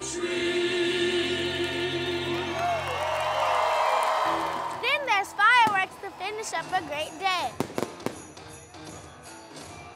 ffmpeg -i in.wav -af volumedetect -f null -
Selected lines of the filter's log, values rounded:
mean_volume: -27.5 dB
max_volume: -9.3 dB